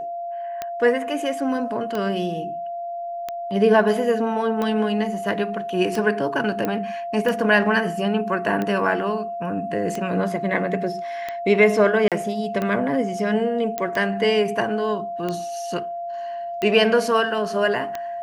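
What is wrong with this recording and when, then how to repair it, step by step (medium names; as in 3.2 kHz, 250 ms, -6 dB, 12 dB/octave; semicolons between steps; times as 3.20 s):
tick 45 rpm -13 dBFS
whine 690 Hz -27 dBFS
6.65 s: pop -11 dBFS
12.08–12.12 s: dropout 37 ms
13.78 s: pop -11 dBFS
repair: de-click; band-stop 690 Hz, Q 30; interpolate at 12.08 s, 37 ms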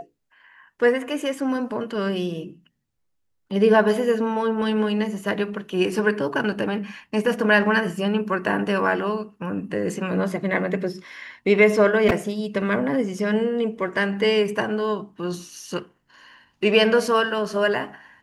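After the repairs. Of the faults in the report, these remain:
nothing left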